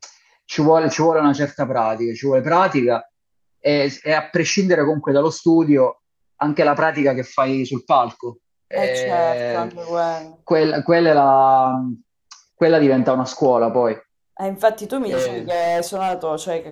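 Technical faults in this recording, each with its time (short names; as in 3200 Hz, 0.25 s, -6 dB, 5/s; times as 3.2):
14.96–16.14 clipped -16.5 dBFS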